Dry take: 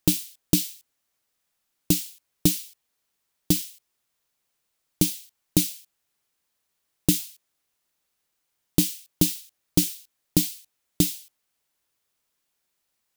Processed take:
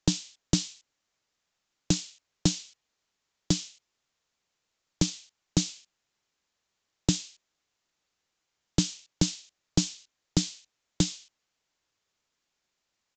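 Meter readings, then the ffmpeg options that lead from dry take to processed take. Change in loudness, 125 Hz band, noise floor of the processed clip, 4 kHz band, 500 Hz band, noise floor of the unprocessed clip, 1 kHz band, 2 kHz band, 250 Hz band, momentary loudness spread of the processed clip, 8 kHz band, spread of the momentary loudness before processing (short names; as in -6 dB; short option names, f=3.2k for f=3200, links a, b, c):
-5.0 dB, -1.5 dB, -82 dBFS, -1.0 dB, -3.5 dB, -78 dBFS, +3.0 dB, -2.0 dB, -4.0 dB, 17 LU, -4.0 dB, 16 LU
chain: -filter_complex "[0:a]acrossover=split=210|3000[a][b][c];[b]acompressor=threshold=-30dB:ratio=6[d];[a][d][c]amix=inputs=3:normalize=0,aresample=16000,acrusher=bits=4:mode=log:mix=0:aa=0.000001,aresample=44100"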